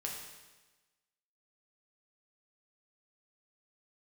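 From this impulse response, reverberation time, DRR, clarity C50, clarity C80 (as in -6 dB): 1.2 s, -1.5 dB, 3.0 dB, 5.0 dB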